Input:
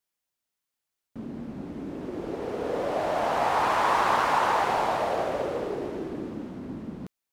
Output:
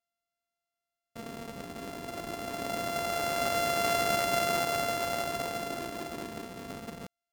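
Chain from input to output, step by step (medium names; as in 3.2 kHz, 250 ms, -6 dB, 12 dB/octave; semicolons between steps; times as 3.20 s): sorted samples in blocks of 64 samples; trim -5 dB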